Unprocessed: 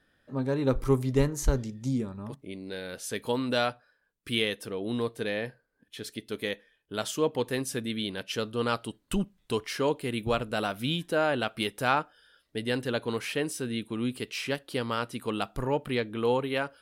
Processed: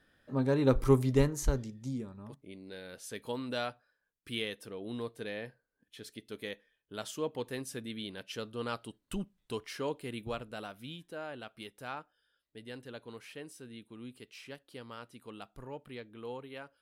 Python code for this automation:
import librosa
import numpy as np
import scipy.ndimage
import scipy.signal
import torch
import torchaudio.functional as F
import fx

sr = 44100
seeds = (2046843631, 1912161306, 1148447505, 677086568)

y = fx.gain(x, sr, db=fx.line((0.99, 0.0), (1.96, -8.5), (10.11, -8.5), (10.98, -16.0)))